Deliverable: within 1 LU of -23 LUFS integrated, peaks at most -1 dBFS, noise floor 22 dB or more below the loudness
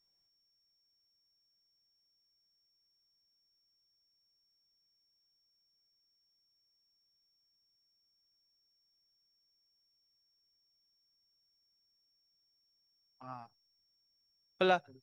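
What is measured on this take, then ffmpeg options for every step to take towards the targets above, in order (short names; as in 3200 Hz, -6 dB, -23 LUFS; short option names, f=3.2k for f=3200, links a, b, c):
steady tone 5500 Hz; tone level -74 dBFS; loudness -31.5 LUFS; peak -15.5 dBFS; loudness target -23.0 LUFS
-> -af "bandreject=f=5.5k:w=30"
-af "volume=8.5dB"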